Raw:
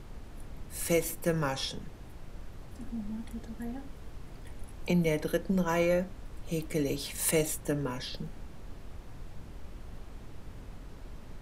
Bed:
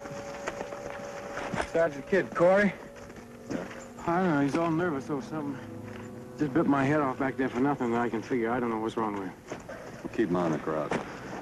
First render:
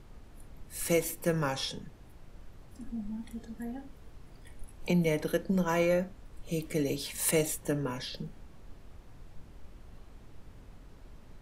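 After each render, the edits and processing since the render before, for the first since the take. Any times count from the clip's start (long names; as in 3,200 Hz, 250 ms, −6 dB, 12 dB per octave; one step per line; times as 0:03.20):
noise reduction from a noise print 6 dB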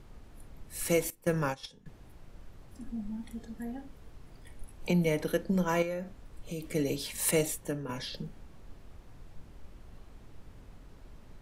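0:01.10–0:01.86: noise gate −33 dBFS, range −16 dB
0:05.82–0:06.75: downward compressor 2.5 to 1, threshold −35 dBFS
0:07.43–0:07.89: fade out linear, to −7 dB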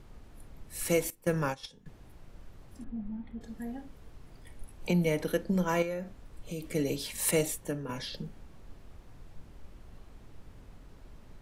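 0:02.84–0:03.41: high-frequency loss of the air 440 metres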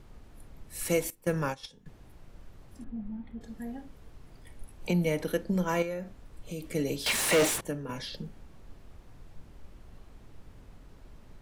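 0:07.06–0:07.61: mid-hump overdrive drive 36 dB, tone 3,000 Hz, clips at −15.5 dBFS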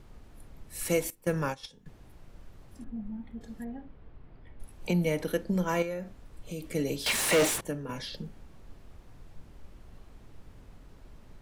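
0:03.64–0:04.60: high-frequency loss of the air 370 metres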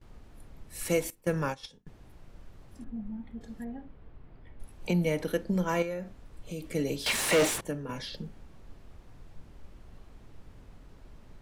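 noise gate with hold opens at −44 dBFS
high-shelf EQ 9,900 Hz −4.5 dB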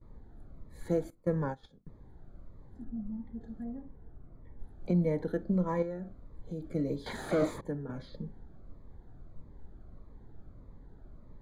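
moving average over 16 samples
phaser whose notches keep moving one way falling 1.6 Hz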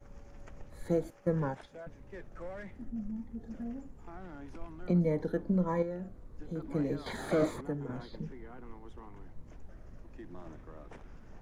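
mix in bed −22 dB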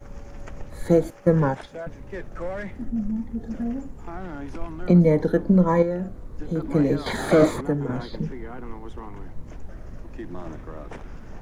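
level +12 dB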